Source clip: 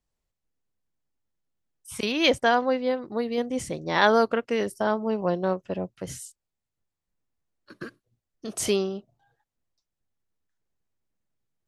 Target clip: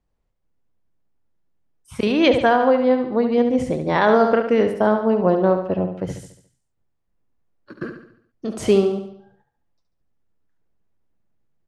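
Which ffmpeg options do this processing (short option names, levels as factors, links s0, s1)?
-af "lowpass=f=1100:p=1,aecho=1:1:71|142|213|284|355|426:0.398|0.191|0.0917|0.044|0.0211|0.0101,alimiter=level_in=4.73:limit=0.891:release=50:level=0:latency=1,volume=0.596"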